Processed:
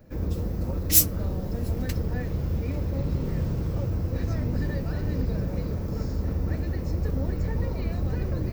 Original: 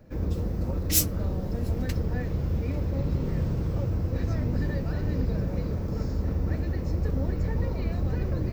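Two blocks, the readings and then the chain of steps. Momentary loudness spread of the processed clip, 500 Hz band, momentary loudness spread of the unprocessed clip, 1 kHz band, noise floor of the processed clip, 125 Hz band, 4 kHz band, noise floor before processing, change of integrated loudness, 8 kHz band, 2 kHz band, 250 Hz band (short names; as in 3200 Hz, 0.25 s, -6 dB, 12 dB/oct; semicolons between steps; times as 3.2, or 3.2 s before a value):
4 LU, 0.0 dB, 3 LU, 0.0 dB, -32 dBFS, 0.0 dB, +1.5 dB, -32 dBFS, +1.0 dB, +3.5 dB, +0.5 dB, 0.0 dB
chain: high shelf 9300 Hz +8.5 dB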